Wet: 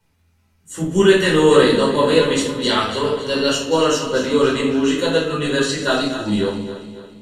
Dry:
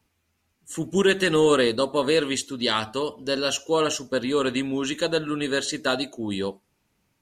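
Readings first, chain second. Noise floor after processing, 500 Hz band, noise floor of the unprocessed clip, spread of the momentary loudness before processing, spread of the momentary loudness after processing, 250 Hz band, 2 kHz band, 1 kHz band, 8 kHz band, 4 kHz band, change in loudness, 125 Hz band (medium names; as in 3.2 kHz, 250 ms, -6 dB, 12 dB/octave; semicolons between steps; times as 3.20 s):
-61 dBFS, +7.5 dB, -73 dBFS, 9 LU, 10 LU, +7.5 dB, +5.5 dB, +7.0 dB, +4.0 dB, +5.5 dB, +7.0 dB, +9.0 dB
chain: backward echo that repeats 140 ms, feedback 67%, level -10.5 dB; simulated room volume 580 m³, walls furnished, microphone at 4.7 m; trim -1.5 dB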